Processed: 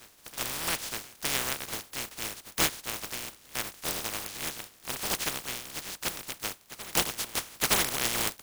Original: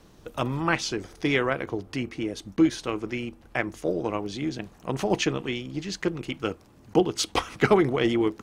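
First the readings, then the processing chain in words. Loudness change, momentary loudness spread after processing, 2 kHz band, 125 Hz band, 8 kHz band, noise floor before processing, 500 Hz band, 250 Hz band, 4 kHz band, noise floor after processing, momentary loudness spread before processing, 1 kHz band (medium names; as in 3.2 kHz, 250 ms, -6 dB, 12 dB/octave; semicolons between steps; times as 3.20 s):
-4.0 dB, 10 LU, -3.5 dB, -12.5 dB, +8.0 dB, -54 dBFS, -14.5 dB, -17.0 dB, +2.0 dB, -58 dBFS, 10 LU, -6.0 dB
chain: spectral contrast reduction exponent 0.14; reverse echo 916 ms -17.5 dB; trim -6 dB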